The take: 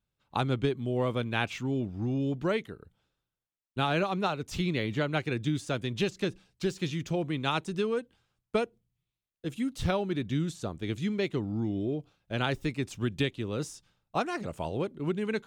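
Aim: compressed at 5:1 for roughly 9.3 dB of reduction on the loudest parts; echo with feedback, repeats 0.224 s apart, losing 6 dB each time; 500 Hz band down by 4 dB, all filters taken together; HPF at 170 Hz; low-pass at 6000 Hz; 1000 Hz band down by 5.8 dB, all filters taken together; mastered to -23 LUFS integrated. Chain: HPF 170 Hz; LPF 6000 Hz; bell 500 Hz -3.5 dB; bell 1000 Hz -7 dB; compressor 5:1, threshold -37 dBFS; feedback echo 0.224 s, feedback 50%, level -6 dB; gain +18 dB

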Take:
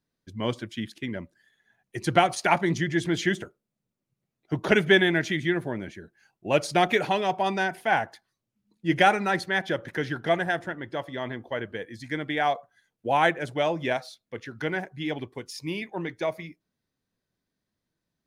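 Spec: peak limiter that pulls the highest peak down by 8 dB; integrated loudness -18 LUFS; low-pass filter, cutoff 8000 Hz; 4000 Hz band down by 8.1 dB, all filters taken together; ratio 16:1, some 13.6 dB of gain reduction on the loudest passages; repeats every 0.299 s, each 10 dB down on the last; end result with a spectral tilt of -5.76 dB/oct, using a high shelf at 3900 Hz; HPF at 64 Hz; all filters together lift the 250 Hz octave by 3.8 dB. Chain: HPF 64 Hz; LPF 8000 Hz; bell 250 Hz +6 dB; high shelf 3900 Hz -4.5 dB; bell 4000 Hz -8.5 dB; compressor 16:1, threshold -26 dBFS; limiter -23 dBFS; feedback echo 0.299 s, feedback 32%, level -10 dB; gain +16.5 dB

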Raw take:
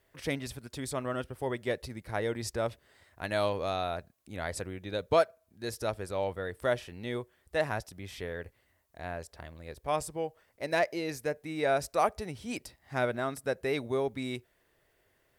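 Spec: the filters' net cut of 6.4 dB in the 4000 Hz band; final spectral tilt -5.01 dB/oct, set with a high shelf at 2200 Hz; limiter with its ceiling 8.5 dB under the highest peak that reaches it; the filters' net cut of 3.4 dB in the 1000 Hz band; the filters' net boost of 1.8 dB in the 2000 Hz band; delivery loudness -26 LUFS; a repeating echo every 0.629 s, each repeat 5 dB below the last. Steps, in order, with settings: bell 1000 Hz -6 dB; bell 2000 Hz +8 dB; high shelf 2200 Hz -5 dB; bell 4000 Hz -5.5 dB; limiter -24 dBFS; feedback echo 0.629 s, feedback 56%, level -5 dB; gain +10 dB

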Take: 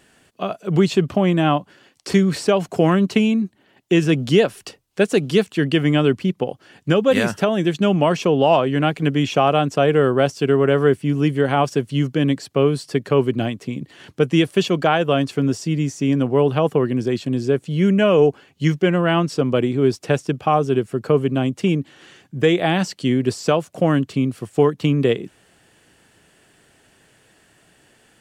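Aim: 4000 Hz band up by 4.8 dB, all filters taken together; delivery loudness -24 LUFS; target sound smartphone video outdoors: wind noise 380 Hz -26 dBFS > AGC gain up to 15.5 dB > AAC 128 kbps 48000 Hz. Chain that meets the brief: bell 4000 Hz +7 dB; wind noise 380 Hz -26 dBFS; AGC gain up to 15.5 dB; gain -4.5 dB; AAC 128 kbps 48000 Hz

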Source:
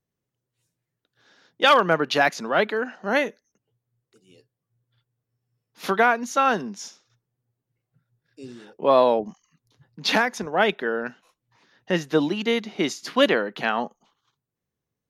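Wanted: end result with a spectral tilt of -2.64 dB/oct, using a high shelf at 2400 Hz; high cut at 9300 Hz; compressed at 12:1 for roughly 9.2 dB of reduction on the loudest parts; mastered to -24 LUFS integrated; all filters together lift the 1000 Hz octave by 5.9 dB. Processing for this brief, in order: LPF 9300 Hz; bell 1000 Hz +6 dB; high shelf 2400 Hz +8.5 dB; compressor 12:1, threshold -15 dBFS; gain -1 dB

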